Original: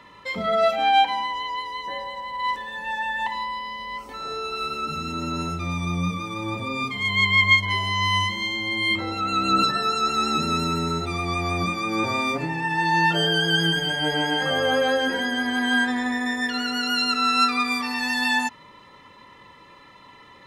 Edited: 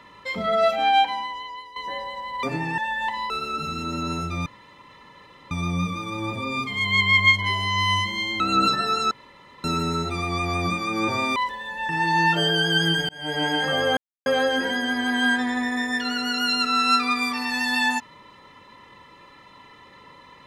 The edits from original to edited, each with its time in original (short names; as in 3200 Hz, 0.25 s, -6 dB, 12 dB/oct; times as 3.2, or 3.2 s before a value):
0.87–1.76 fade out, to -12.5 dB
2.43–2.96 swap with 12.32–12.67
3.48–4.59 cut
5.75 insert room tone 1.05 s
8.64–9.36 cut
10.07–10.6 room tone
13.87–14.22 fade in
14.75 insert silence 0.29 s